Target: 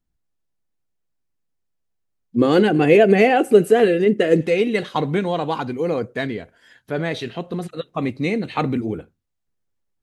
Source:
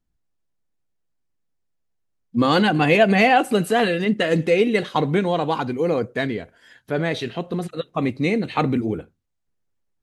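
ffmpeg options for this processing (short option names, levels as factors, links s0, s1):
-filter_complex "[0:a]asettb=1/sr,asplit=3[s0][s1][s2];[s0]atrim=end=2.364[s3];[s1]atrim=start=2.36:end=4.41,asetpts=PTS-STARTPTS,afade=t=in:d=0.004:c=qsin,afade=t=out:st=2.046:d=0.004:c=qsin,equalizer=f=400:t=o:w=0.67:g=12,equalizer=f=1000:t=o:w=0.67:g=-7,equalizer=f=4000:t=o:w=0.67:g=-7[s4];[s2]atrim=start=4.406[s5];[s3][s4]acrossfade=d=0.004:c1=hsin:c2=qsin[s6];[s6][s5]acrossfade=d=0.004:c1=qsin:c2=hsin,volume=0.891"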